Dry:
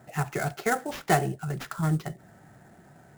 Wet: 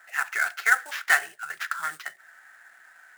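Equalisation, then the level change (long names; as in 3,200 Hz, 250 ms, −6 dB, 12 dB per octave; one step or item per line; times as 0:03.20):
high-pass with resonance 1,600 Hz, resonance Q 3.3
+2.5 dB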